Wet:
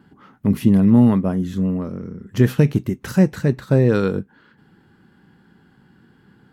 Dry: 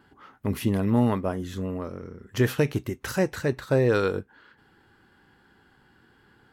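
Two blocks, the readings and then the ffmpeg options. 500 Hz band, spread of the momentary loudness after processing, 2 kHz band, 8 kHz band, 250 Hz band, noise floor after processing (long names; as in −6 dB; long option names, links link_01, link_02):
+3.0 dB, 13 LU, 0.0 dB, 0.0 dB, +10.5 dB, −56 dBFS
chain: -af "equalizer=frequency=180:width=1:gain=14"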